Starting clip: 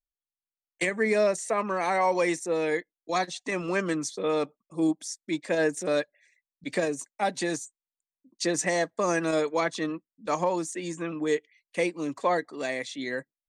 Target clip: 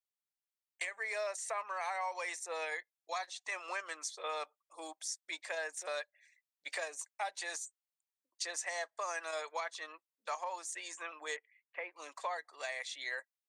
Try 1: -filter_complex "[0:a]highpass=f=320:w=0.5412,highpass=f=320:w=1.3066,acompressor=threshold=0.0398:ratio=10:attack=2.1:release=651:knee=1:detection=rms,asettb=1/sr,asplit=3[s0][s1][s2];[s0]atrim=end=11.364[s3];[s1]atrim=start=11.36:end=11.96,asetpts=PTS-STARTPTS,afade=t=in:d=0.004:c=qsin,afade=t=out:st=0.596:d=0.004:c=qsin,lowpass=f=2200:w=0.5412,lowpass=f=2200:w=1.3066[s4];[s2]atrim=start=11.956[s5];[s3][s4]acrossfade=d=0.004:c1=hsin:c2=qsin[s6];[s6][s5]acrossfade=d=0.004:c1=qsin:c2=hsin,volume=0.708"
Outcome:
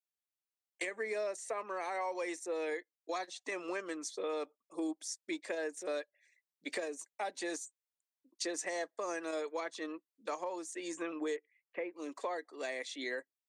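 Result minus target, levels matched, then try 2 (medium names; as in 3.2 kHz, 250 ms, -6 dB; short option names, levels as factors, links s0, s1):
250 Hz band +19.5 dB
-filter_complex "[0:a]highpass=f=700:w=0.5412,highpass=f=700:w=1.3066,acompressor=threshold=0.0398:ratio=10:attack=2.1:release=651:knee=1:detection=rms,asettb=1/sr,asplit=3[s0][s1][s2];[s0]atrim=end=11.364[s3];[s1]atrim=start=11.36:end=11.96,asetpts=PTS-STARTPTS,afade=t=in:d=0.004:c=qsin,afade=t=out:st=0.596:d=0.004:c=qsin,lowpass=f=2200:w=0.5412,lowpass=f=2200:w=1.3066[s4];[s2]atrim=start=11.956[s5];[s3][s4]acrossfade=d=0.004:c1=hsin:c2=qsin[s6];[s6][s5]acrossfade=d=0.004:c1=qsin:c2=hsin,volume=0.708"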